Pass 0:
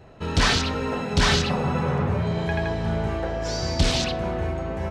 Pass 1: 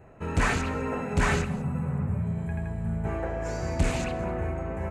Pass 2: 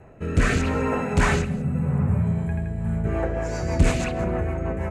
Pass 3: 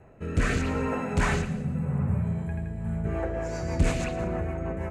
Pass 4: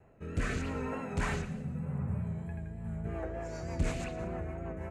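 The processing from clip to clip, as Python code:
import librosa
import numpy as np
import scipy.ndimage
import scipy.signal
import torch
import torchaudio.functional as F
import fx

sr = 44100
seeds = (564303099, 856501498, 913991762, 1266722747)

y1 = fx.spec_box(x, sr, start_s=1.45, length_s=1.6, low_hz=250.0, high_hz=7200.0, gain_db=-11)
y1 = fx.band_shelf(y1, sr, hz=4200.0, db=-14.5, octaves=1.1)
y1 = y1 + 10.0 ** (-19.5 / 20.0) * np.pad(y1, (int(199 * sr / 1000.0), 0))[:len(y1)]
y1 = F.gain(torch.from_numpy(y1), -3.5).numpy()
y2 = fx.rotary_switch(y1, sr, hz=0.8, then_hz=6.3, switch_at_s=2.55)
y2 = F.gain(torch.from_numpy(y2), 7.0).numpy()
y3 = fx.echo_feedback(y2, sr, ms=115, feedback_pct=41, wet_db=-14.5)
y3 = F.gain(torch.from_numpy(y3), -5.0).numpy()
y4 = fx.vibrato(y3, sr, rate_hz=3.3, depth_cents=41.0)
y4 = F.gain(torch.from_numpy(y4), -8.0).numpy()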